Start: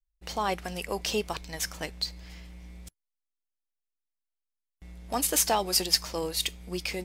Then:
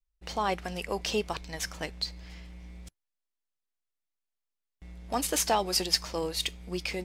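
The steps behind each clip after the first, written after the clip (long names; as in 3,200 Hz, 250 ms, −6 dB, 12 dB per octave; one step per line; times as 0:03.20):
high-shelf EQ 9,500 Hz −11 dB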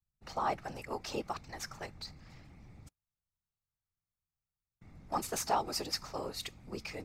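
random phases in short frames
thirty-one-band graphic EQ 800 Hz +6 dB, 1,250 Hz +8 dB, 3,150 Hz −8 dB, 10,000 Hz −5 dB
level −8 dB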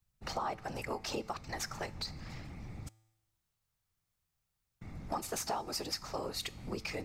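downward compressor 4 to 1, threshold −45 dBFS, peak gain reduction 16.5 dB
tuned comb filter 110 Hz, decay 1 s, harmonics all, mix 40%
level +13 dB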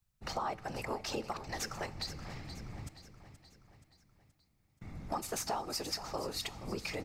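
repeating echo 476 ms, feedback 52%, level −12.5 dB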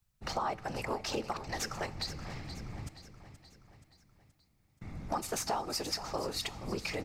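highs frequency-modulated by the lows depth 0.13 ms
level +2.5 dB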